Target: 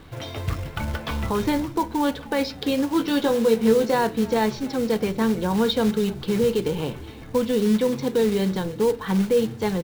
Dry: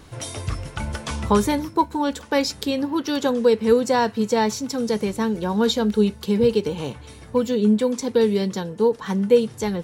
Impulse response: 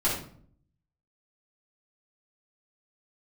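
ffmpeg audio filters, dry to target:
-filter_complex "[0:a]lowpass=f=4.1k:w=0.5412,lowpass=f=4.1k:w=1.3066,alimiter=limit=-14dB:level=0:latency=1:release=31,acrusher=bits=4:mode=log:mix=0:aa=0.000001,asettb=1/sr,asplit=3[a][b][c];[a]atrim=end=2.984[d];[b]atrim=start=2.98:end=3.95,asetpts=PTS-STARTPTS,afade=t=in:d=0.004:c=qsin,afade=t=out:st=0.966:d=0.004:c=qsin,asplit=2[e][f];[f]adelay=18,volume=-5.5dB[g];[e][g]amix=inputs=2:normalize=0,atrim=end_sample=42777[h];[c]atrim=start=3.946[i];[d][h]acrossfade=d=0.004:c1=hsin:c2=qsin[j];[j][i]acrossfade=d=0.004:c1=qsin:c2=hsin,asplit=5[k][l][m][n][o];[l]adelay=306,afreqshift=-73,volume=-19.5dB[p];[m]adelay=612,afreqshift=-146,volume=-26.1dB[q];[n]adelay=918,afreqshift=-219,volume=-32.6dB[r];[o]adelay=1224,afreqshift=-292,volume=-39.2dB[s];[k][p][q][r][s]amix=inputs=5:normalize=0,asplit=2[t][u];[1:a]atrim=start_sample=2205,asetrate=83790,aresample=44100[v];[u][v]afir=irnorm=-1:irlink=0,volume=-19.5dB[w];[t][w]amix=inputs=2:normalize=0"

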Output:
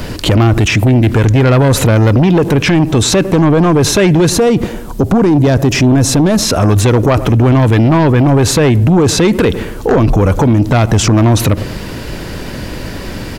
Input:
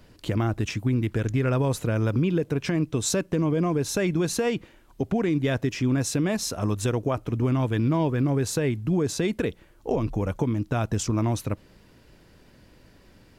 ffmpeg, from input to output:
-filter_complex "[0:a]acrossover=split=3400[a][b];[b]acompressor=threshold=-41dB:ratio=4:attack=1:release=60[c];[a][c]amix=inputs=2:normalize=0,aeval=exprs='0.224*sin(PI/2*2*val(0)/0.224)':c=same,asettb=1/sr,asplit=3[d][e][f];[d]atrim=end=4.304[g];[e]atrim=start=4.3:end=6.42,asetpts=PTS-STARTPTS,afade=t=in:d=0.004:c=qsin,afade=t=out:st=2.116:d=0.004:c=qsin,equalizer=f=2.4k:t=o:w=1.8:g=-8[h];[f]atrim=start=6.416[i];[g][h]acrossfade=d=0.004:c1=hsin:c2=qsin[j];[j][i]acrossfade=d=0.004:c1=qsin:c2=hsin,asplit=2[k][l];[l]adelay=105,lowpass=f=870:p=1,volume=-23dB,asplit=2[m][n];[n]adelay=105,lowpass=f=870:p=1,volume=0.54,asplit=2[o][p];[p]adelay=105,lowpass=f=870:p=1,volume=0.54,asplit=2[q][r];[r]adelay=105,lowpass=f=870:p=1,volume=0.54[s];[k][m][o][q][s]amix=inputs=5:normalize=0,alimiter=level_in=24.5dB:limit=-1dB:release=50:level=0:latency=1,volume=-3.5dB"

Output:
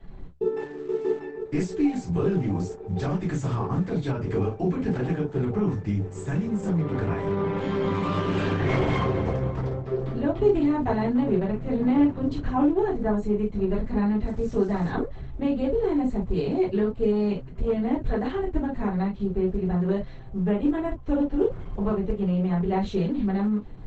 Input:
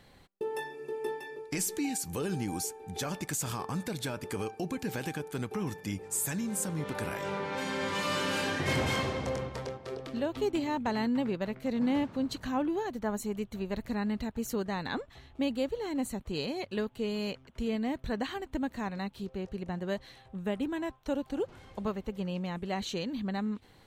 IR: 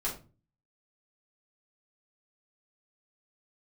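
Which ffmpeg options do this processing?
-filter_complex "[0:a]acrossover=split=730[a][b];[a]acontrast=73[c];[c][b]amix=inputs=2:normalize=0,bass=f=250:g=8,treble=f=4k:g=-14,bandreject=f=70.02:t=h:w=4,bandreject=f=140.04:t=h:w=4,asettb=1/sr,asplit=3[d][e][f];[d]atrim=end=14.264[g];[e]atrim=start=14.26:end=14.89,asetpts=PTS-STARTPTS,afade=t=in:d=0.004:c=qsin,afade=t=out:st=0.626:d=0.004:c=qsin,acrusher=bits=7:mix=0:aa=0.5[h];[f]atrim=start=14.886[i];[g][h]acrossfade=d=0.004:c1=hsin:c2=qsin[j];[j][i]acrossfade=d=0.004:c1=qsin:c2=hsin,adynamicequalizer=threshold=0.00708:dfrequency=100:dqfactor=5.9:tfrequency=100:tqfactor=5.9:attack=5:release=100:ratio=0.375:range=2.5:mode=boostabove:tftype=bell[k];[1:a]atrim=start_sample=2205,atrim=end_sample=3087[l];[k][l]afir=irnorm=-1:irlink=0,asplit=3[m][n][o];[m]afade=t=out:st=0.59:d=0.02[p];[n]aeval=exprs='sgn(val(0))*max(abs(val(0))-0.00376,0)':c=same,afade=t=in:st=0.59:d=0.02,afade=t=out:st=1.19:d=0.02[q];[o]afade=t=in:st=1.19:d=0.02[r];[p][q][r]amix=inputs=3:normalize=0,asettb=1/sr,asplit=3[s][t][u];[s]atrim=end=17.124[v];[t]atrim=start=17.12:end=17.88,asetpts=PTS-STARTPTS,afade=t=in:d=0.004:c=qsin,afade=t=out:st=0.756:d=0.004:c=qsin,aeval=exprs='(tanh(3.55*val(0)+0.1)-tanh(0.1))/3.55':c=same[w];[u]atrim=start=17.876[x];[v][w]acrossfade=d=0.004:c1=hsin:c2=qsin[y];[y][x]acrossfade=d=0.004:c1=qsin:c2=hsin,acrossover=split=370[z][aa];[z]acompressor=threshold=-24dB:ratio=3[ab];[ab][aa]amix=inputs=2:normalize=0,volume=-1.5dB" -ar 48000 -c:a libopus -b:a 12k

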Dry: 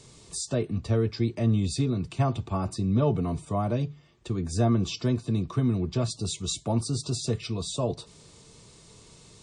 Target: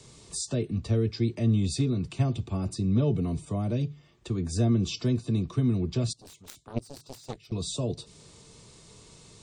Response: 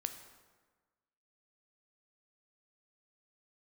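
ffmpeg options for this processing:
-filter_complex "[0:a]acrossover=split=200|540|1900[a][b][c][d];[c]acompressor=threshold=-50dB:ratio=6[e];[a][b][e][d]amix=inputs=4:normalize=0,asettb=1/sr,asplit=3[f][g][h];[f]atrim=end=6.134[i];[g]atrim=start=6.13:end=7.52,asetpts=PTS-STARTPTS,afade=t=in:d=0.004:c=qsin,afade=t=out:st=1.386:d=0.004:c=qsin,aeval=exprs='0.168*(cos(1*acos(clip(val(0)/0.168,-1,1)))-cos(1*PI/2))+0.0668*(cos(3*acos(clip(val(0)/0.168,-1,1)))-cos(3*PI/2))':c=same[j];[h]atrim=start=7.516[k];[i][j]acrossfade=d=0.004:c1=hsin:c2=qsin[l];[l][k]acrossfade=d=0.004:c1=qsin:c2=hsin"

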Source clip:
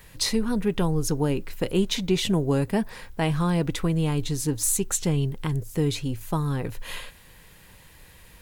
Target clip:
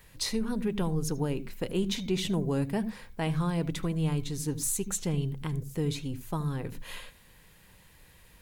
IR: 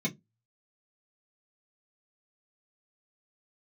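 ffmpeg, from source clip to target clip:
-filter_complex "[0:a]asplit=2[a][b];[1:a]atrim=start_sample=2205,adelay=74[c];[b][c]afir=irnorm=-1:irlink=0,volume=-23.5dB[d];[a][d]amix=inputs=2:normalize=0,volume=-6.5dB"

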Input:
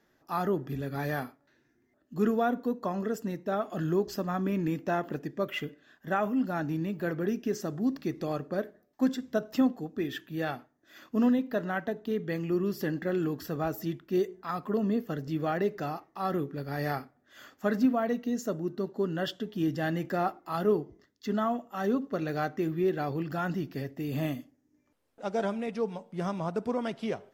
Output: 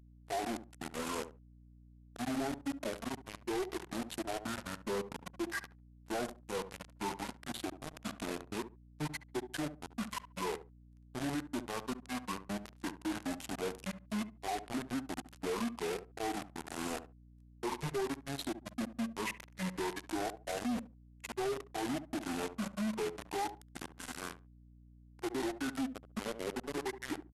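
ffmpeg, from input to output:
-filter_complex "[0:a]afftfilt=real='re*pow(10,14/40*sin(2*PI*(0.82*log(max(b,1)*sr/1024/100)/log(2)-(-0.56)*(pts-256)/sr)))':imag='im*pow(10,14/40*sin(2*PI*(0.82*log(max(b,1)*sr/1024/100)/log(2)-(-0.56)*(pts-256)/sr)))':win_size=1024:overlap=0.75,highpass=f=410:w=0.5412,highpass=f=410:w=1.3066,adynamicequalizer=threshold=0.00251:dfrequency=3700:dqfactor=1:tfrequency=3700:tqfactor=1:attack=5:release=100:ratio=0.375:range=2.5:mode=boostabove:tftype=bell,acompressor=mode=upward:threshold=-34dB:ratio=2.5,aeval=exprs='val(0)*gte(abs(val(0)),0.0266)':c=same,agate=range=-33dB:threshold=-42dB:ratio=3:detection=peak,acompressor=threshold=-31dB:ratio=2.5,asplit=2[a][b];[b]adelay=72,lowpass=f=1.9k:p=1,volume=-18.5dB,asplit=2[c][d];[d]adelay=72,lowpass=f=1.9k:p=1,volume=0.19[e];[c][e]amix=inputs=2:normalize=0[f];[a][f]amix=inputs=2:normalize=0,asoftclip=type=tanh:threshold=-37dB,asetrate=25476,aresample=44100,atempo=1.73107,aeval=exprs='val(0)+0.000708*(sin(2*PI*60*n/s)+sin(2*PI*2*60*n/s)/2+sin(2*PI*3*60*n/s)/3+sin(2*PI*4*60*n/s)/4+sin(2*PI*5*60*n/s)/5)':c=same,volume=5.5dB"

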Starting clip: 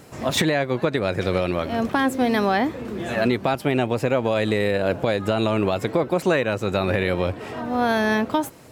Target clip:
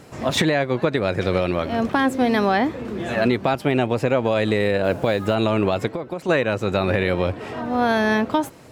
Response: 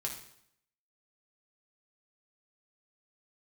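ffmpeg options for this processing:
-filter_complex "[0:a]highshelf=f=9.8k:g=-9,asettb=1/sr,asplit=3[a][b][c];[a]atrim=end=4.844[d];[b]atrim=start=4.84:end=5.35,asetpts=PTS-STARTPTS,afade=t=in:d=0.004:c=qsin,afade=t=out:st=0.506:d=0.004:c=qsin,acrusher=bits=7:mix=0:aa=0.5[e];[c]atrim=start=5.346[f];[d][e]acrossfade=d=0.004:c1=hsin:c2=qsin[g];[g][f]acrossfade=d=0.004:c1=qsin:c2=hsin,asplit=3[h][i][j];[h]afade=t=out:st=5.87:d=0.02[k];[i]acompressor=threshold=-28dB:ratio=4,afade=t=in:st=5.87:d=0.02,afade=t=out:st=6.28:d=0.02[l];[j]afade=t=in:st=6.28:d=0.02[m];[k][l][m]amix=inputs=3:normalize=0,volume=1.5dB"

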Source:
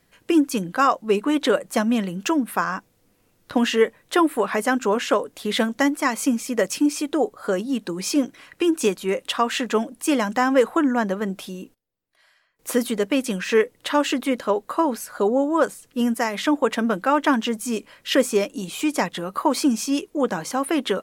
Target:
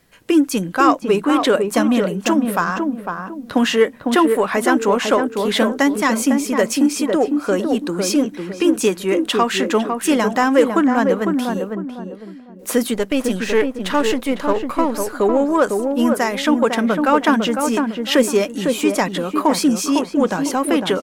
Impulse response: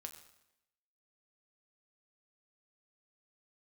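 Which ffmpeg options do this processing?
-filter_complex "[0:a]asettb=1/sr,asplit=3[a][b][c];[a]atrim=end=12.944[d];[b]atrim=start=12.94:end=14.95,asetpts=PTS-STARTPTS,afade=t=in:d=0.004:c=qsin,afade=t=out:st=2.006:d=0.004:c=qsin,aeval=exprs='if(lt(val(0),0),0.447*val(0),val(0))':c=same[e];[c]atrim=start=14.946[f];[d][e]acrossfade=d=0.004:c1=hsin:c2=qsin[g];[g][f]acrossfade=d=0.004:c1=qsin:c2=hsin,asplit=2[h][i];[i]adelay=503,lowpass=f=1k:p=1,volume=-4dB,asplit=2[j][k];[k]adelay=503,lowpass=f=1k:p=1,volume=0.32,asplit=2[l][m];[m]adelay=503,lowpass=f=1k:p=1,volume=0.32,asplit=2[n][o];[o]adelay=503,lowpass=f=1k:p=1,volume=0.32[p];[h][j][l][n][p]amix=inputs=5:normalize=0,asplit=2[q][r];[r]asoftclip=type=tanh:threshold=-23dB,volume=-9dB[s];[q][s]amix=inputs=2:normalize=0,volume=2.5dB"

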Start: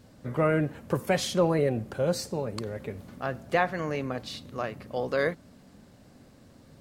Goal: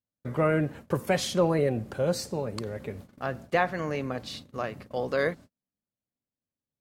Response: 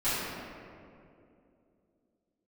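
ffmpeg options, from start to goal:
-af "agate=range=-42dB:threshold=-43dB:ratio=16:detection=peak"

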